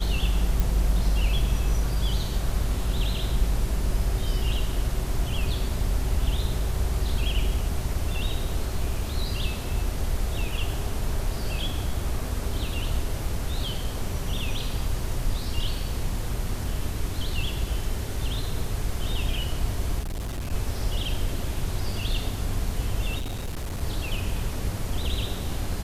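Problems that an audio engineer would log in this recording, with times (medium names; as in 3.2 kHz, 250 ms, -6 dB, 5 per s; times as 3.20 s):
0.60 s: pop
19.99–20.53 s: clipped -27.5 dBFS
23.18–23.83 s: clipped -27 dBFS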